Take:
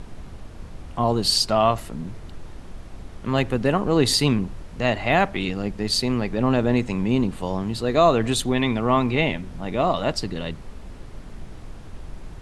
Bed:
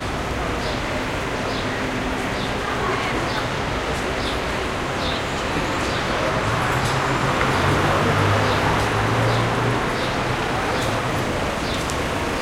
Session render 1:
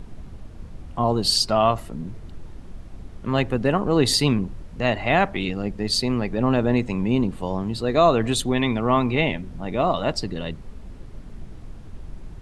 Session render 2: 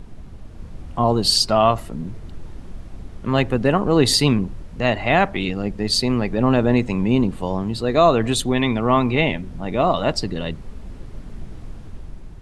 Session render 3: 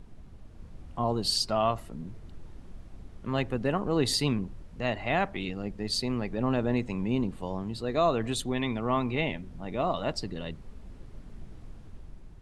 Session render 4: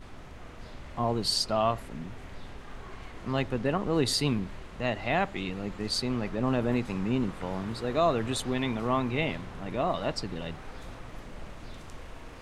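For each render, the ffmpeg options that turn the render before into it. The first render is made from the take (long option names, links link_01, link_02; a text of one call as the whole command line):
ffmpeg -i in.wav -af "afftdn=noise_reduction=6:noise_floor=-40" out.wav
ffmpeg -i in.wav -af "dynaudnorm=framelen=130:gausssize=9:maxgain=4dB" out.wav
ffmpeg -i in.wav -af "volume=-10.5dB" out.wav
ffmpeg -i in.wav -i bed.wav -filter_complex "[1:a]volume=-25dB[link_01];[0:a][link_01]amix=inputs=2:normalize=0" out.wav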